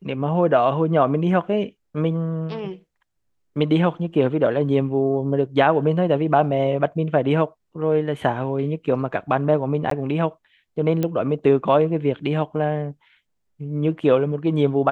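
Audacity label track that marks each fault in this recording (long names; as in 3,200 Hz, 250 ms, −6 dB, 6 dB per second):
9.900000	9.910000	drop-out 13 ms
11.030000	11.030000	click −11 dBFS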